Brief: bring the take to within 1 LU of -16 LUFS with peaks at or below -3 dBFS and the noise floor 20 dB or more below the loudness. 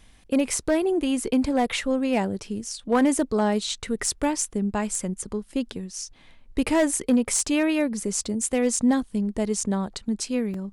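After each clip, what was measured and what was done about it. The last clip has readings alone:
clipped 0.3%; flat tops at -13.5 dBFS; dropouts 1; longest dropout 3.1 ms; loudness -25.0 LUFS; peak -13.5 dBFS; loudness target -16.0 LUFS
-> clip repair -13.5 dBFS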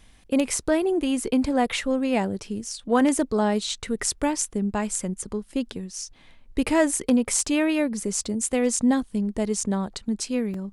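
clipped 0.0%; dropouts 1; longest dropout 3.1 ms
-> interpolate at 10.54, 3.1 ms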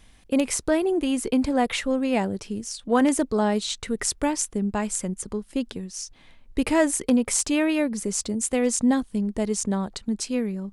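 dropouts 0; loudness -24.5 LUFS; peak -7.5 dBFS; loudness target -16.0 LUFS
-> gain +8.5 dB; limiter -3 dBFS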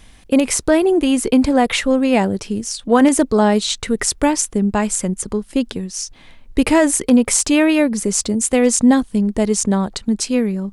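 loudness -16.5 LUFS; peak -3.0 dBFS; noise floor -44 dBFS

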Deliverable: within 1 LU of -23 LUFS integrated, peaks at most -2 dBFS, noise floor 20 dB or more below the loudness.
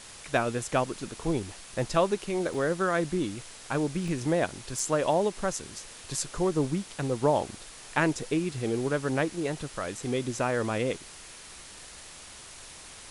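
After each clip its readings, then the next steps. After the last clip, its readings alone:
dropouts 4; longest dropout 2.6 ms; noise floor -47 dBFS; noise floor target -50 dBFS; loudness -29.5 LUFS; peak -9.0 dBFS; loudness target -23.0 LUFS
-> interpolate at 2.54/4.08/4.79/8.23, 2.6 ms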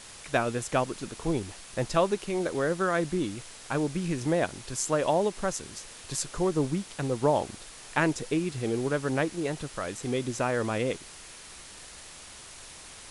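dropouts 0; noise floor -47 dBFS; noise floor target -50 dBFS
-> denoiser 6 dB, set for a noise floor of -47 dBFS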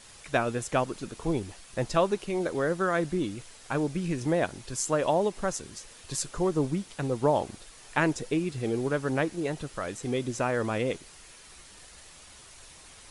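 noise floor -51 dBFS; loudness -29.5 LUFS; peak -9.0 dBFS; loudness target -23.0 LUFS
-> gain +6.5 dB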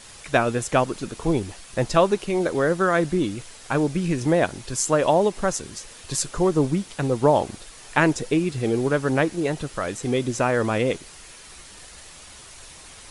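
loudness -23.0 LUFS; peak -2.5 dBFS; noise floor -45 dBFS

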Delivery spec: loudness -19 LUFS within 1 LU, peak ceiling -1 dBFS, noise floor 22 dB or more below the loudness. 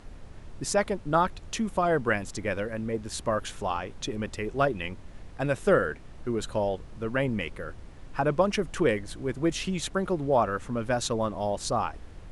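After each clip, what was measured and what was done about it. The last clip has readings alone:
noise floor -46 dBFS; noise floor target -51 dBFS; loudness -29.0 LUFS; peak -10.0 dBFS; loudness target -19.0 LUFS
-> noise print and reduce 6 dB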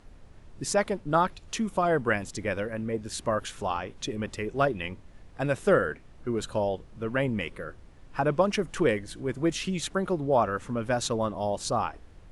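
noise floor -51 dBFS; loudness -29.0 LUFS; peak -10.0 dBFS; loudness target -19.0 LUFS
-> gain +10 dB; limiter -1 dBFS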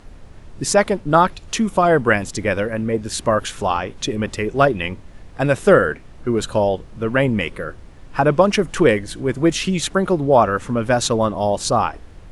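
loudness -19.0 LUFS; peak -1.0 dBFS; noise floor -41 dBFS

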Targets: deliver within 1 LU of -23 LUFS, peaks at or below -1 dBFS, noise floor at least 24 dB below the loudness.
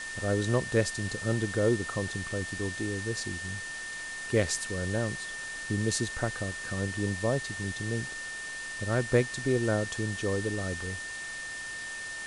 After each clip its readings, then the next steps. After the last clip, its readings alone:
steady tone 1800 Hz; tone level -37 dBFS; noise floor -39 dBFS; noise floor target -55 dBFS; loudness -31.0 LUFS; peak -11.5 dBFS; loudness target -23.0 LUFS
-> notch 1800 Hz, Q 30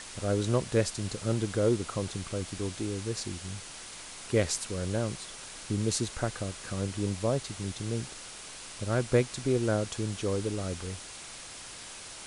steady tone none; noise floor -45 dBFS; noise floor target -56 dBFS
-> denoiser 11 dB, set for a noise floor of -45 dBFS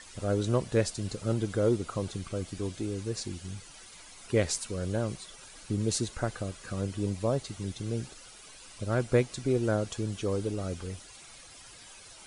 noise floor -51 dBFS; noise floor target -56 dBFS
-> denoiser 6 dB, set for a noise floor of -51 dBFS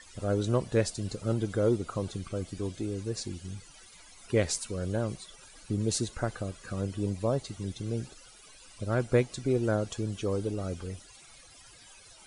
noise floor -54 dBFS; noise floor target -56 dBFS
-> denoiser 6 dB, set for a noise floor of -54 dBFS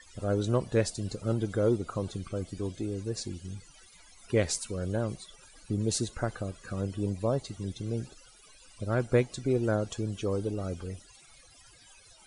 noise floor -57 dBFS; loudness -32.0 LUFS; peak -11.5 dBFS; loudness target -23.0 LUFS
-> gain +9 dB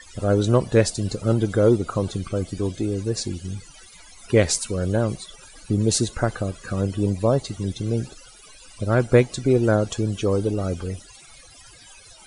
loudness -23.0 LUFS; peak -2.5 dBFS; noise floor -48 dBFS

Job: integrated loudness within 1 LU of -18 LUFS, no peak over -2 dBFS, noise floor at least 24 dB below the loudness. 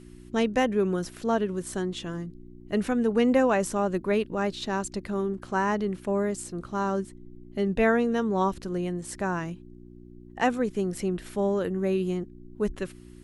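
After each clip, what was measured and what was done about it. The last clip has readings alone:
hum 60 Hz; harmonics up to 360 Hz; hum level -47 dBFS; loudness -27.5 LUFS; peak -10.0 dBFS; loudness target -18.0 LUFS
-> de-hum 60 Hz, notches 6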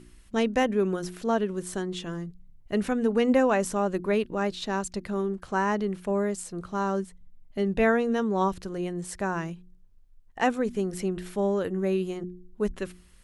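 hum none; loudness -28.0 LUFS; peak -10.5 dBFS; loudness target -18.0 LUFS
-> gain +10 dB; limiter -2 dBFS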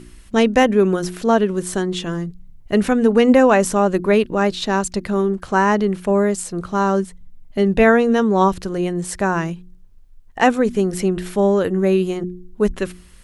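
loudness -18.0 LUFS; peak -2.0 dBFS; noise floor -44 dBFS

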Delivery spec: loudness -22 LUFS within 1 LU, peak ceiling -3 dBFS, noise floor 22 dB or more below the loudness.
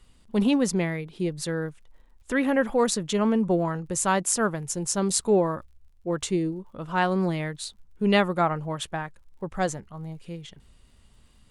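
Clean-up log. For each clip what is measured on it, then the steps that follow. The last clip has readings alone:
ticks 37/s; loudness -26.0 LUFS; peak -5.0 dBFS; loudness target -22.0 LUFS
-> de-click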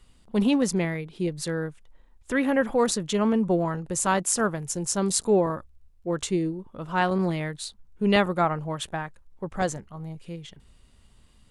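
ticks 0/s; loudness -26.0 LUFS; peak -5.0 dBFS; loudness target -22.0 LUFS
-> gain +4 dB; limiter -3 dBFS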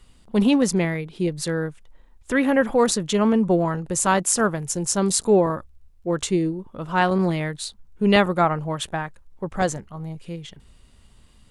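loudness -22.0 LUFS; peak -3.0 dBFS; noise floor -53 dBFS

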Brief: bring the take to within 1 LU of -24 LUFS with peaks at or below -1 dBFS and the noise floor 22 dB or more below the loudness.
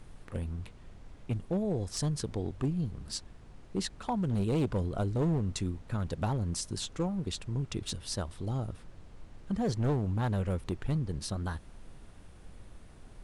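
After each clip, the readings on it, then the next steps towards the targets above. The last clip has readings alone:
clipped 1.2%; flat tops at -24.0 dBFS; noise floor -52 dBFS; noise floor target -56 dBFS; loudness -33.5 LUFS; peak -24.0 dBFS; loudness target -24.0 LUFS
-> clip repair -24 dBFS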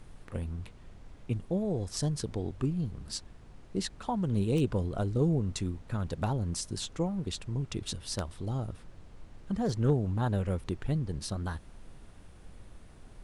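clipped 0.0%; noise floor -52 dBFS; noise floor target -55 dBFS
-> noise print and reduce 6 dB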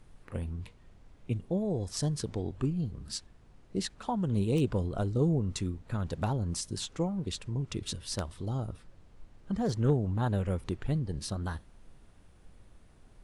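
noise floor -58 dBFS; loudness -33.0 LUFS; peak -15.0 dBFS; loudness target -24.0 LUFS
-> gain +9 dB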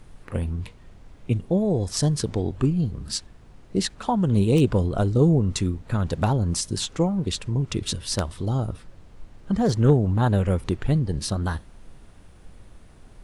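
loudness -24.0 LUFS; peak -6.0 dBFS; noise floor -49 dBFS

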